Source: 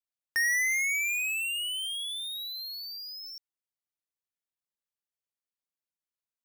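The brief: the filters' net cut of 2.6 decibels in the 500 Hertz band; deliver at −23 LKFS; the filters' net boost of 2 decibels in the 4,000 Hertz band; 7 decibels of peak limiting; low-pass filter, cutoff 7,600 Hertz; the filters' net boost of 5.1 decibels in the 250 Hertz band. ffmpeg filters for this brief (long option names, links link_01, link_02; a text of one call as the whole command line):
ffmpeg -i in.wav -af "lowpass=7600,equalizer=frequency=250:width_type=o:gain=8.5,equalizer=frequency=500:width_type=o:gain=-6,equalizer=frequency=4000:width_type=o:gain=3,volume=7.5dB,alimiter=limit=-21dB:level=0:latency=1" out.wav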